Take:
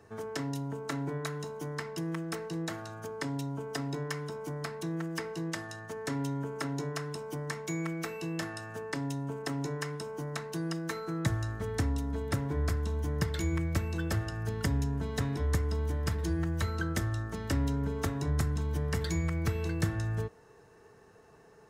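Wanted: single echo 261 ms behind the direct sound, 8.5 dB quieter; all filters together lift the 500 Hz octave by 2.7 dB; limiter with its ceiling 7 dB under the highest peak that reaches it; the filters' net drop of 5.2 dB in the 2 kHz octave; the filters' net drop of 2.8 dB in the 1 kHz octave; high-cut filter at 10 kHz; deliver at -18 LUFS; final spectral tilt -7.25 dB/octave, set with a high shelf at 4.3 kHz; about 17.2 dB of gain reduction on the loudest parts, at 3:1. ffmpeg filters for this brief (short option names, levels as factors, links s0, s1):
-af "lowpass=10000,equalizer=f=500:t=o:g=4,equalizer=f=1000:t=o:g=-3,equalizer=f=2000:t=o:g=-5,highshelf=f=4300:g=-4,acompressor=threshold=0.00355:ratio=3,alimiter=level_in=5.62:limit=0.0631:level=0:latency=1,volume=0.178,aecho=1:1:261:0.376,volume=31.6"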